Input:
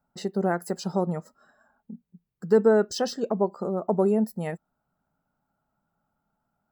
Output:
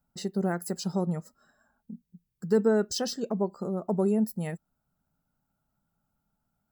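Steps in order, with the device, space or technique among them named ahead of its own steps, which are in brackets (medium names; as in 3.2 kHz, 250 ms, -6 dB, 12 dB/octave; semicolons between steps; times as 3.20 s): smiley-face EQ (bass shelf 130 Hz +6 dB; peaking EQ 780 Hz -6 dB 2.7 oct; treble shelf 5.9 kHz +6 dB); trim -1 dB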